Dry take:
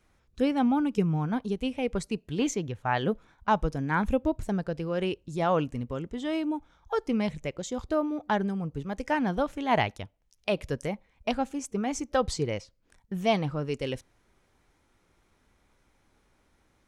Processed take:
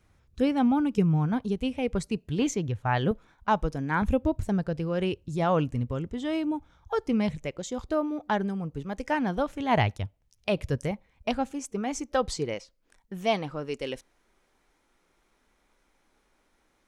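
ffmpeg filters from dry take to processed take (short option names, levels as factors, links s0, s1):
-af "asetnsamples=n=441:p=0,asendcmd='3.11 equalizer g -1.5;4.02 equalizer g 9;7.36 equalizer g -1.5;9.6 equalizer g 10;10.91 equalizer g 4;11.53 equalizer g -7;12.54 equalizer g -14.5',equalizer=f=94:t=o:w=1.4:g=8.5"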